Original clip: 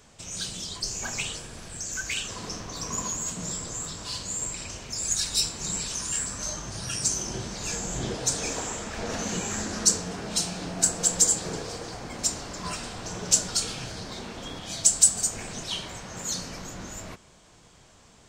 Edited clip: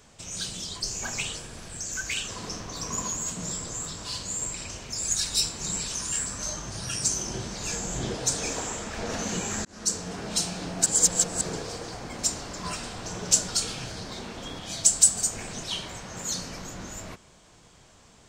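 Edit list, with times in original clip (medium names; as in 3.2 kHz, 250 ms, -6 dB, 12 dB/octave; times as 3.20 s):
9.65–10.34 s: fade in equal-power
10.86–11.41 s: reverse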